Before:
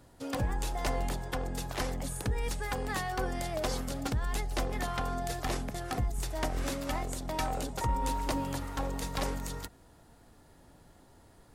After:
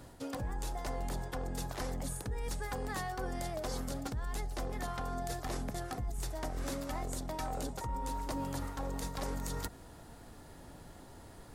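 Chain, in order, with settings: dynamic bell 2.7 kHz, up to -5 dB, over -53 dBFS, Q 1.5; reverse; compression 6:1, threshold -41 dBFS, peak gain reduction 15 dB; reverse; trim +6 dB

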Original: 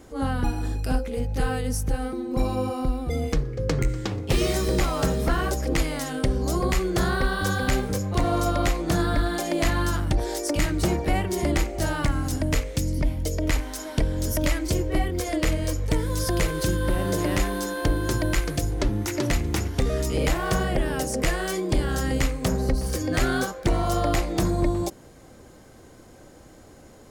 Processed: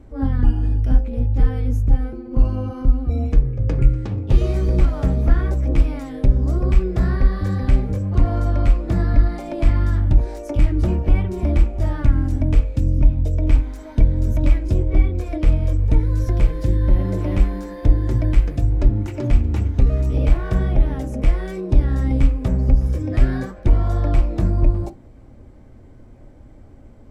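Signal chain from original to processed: RIAA curve playback; formant shift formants +2 st; on a send: reverberation, pre-delay 3 ms, DRR 4.5 dB; on the sum: trim -7 dB

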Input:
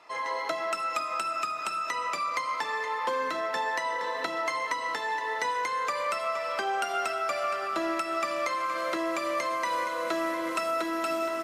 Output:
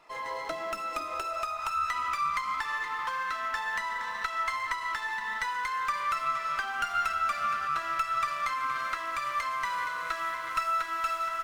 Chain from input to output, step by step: modulation noise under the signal 35 dB; high-pass sweep 120 Hz -> 1.3 kHz, 0.52–1.87 s; sliding maximum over 3 samples; trim -4 dB

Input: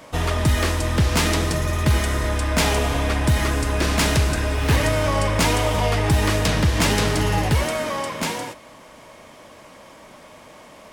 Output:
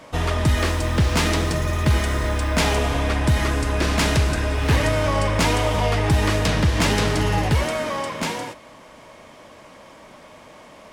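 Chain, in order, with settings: treble shelf 9.3 kHz -8 dB; 0.56–2.76 s: added noise blue -55 dBFS

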